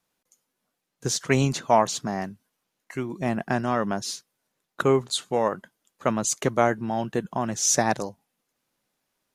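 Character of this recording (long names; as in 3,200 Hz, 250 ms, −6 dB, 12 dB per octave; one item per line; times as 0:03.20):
background noise floor −81 dBFS
spectral slope −4.0 dB per octave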